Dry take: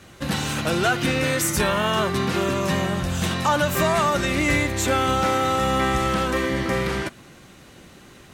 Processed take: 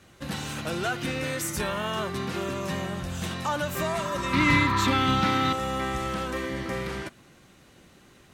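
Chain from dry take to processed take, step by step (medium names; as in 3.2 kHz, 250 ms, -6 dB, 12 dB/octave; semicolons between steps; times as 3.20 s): 3.98–4.91 s: spectral replace 820–1800 Hz before; 4.33–5.53 s: ten-band graphic EQ 125 Hz +9 dB, 250 Hz +10 dB, 500 Hz -6 dB, 1 kHz +5 dB, 2 kHz +5 dB, 4 kHz +10 dB, 8 kHz -5 dB; trim -8 dB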